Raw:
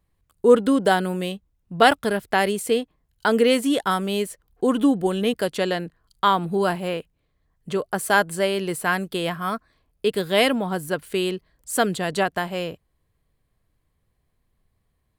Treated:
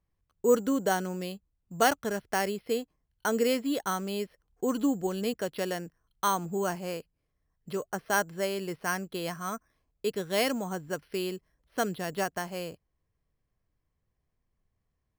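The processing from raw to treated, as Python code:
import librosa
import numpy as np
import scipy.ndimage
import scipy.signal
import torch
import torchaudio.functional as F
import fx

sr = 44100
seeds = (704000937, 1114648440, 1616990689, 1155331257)

y = np.repeat(scipy.signal.resample_poly(x, 1, 6), 6)[:len(x)]
y = F.gain(torch.from_numpy(y), -8.5).numpy()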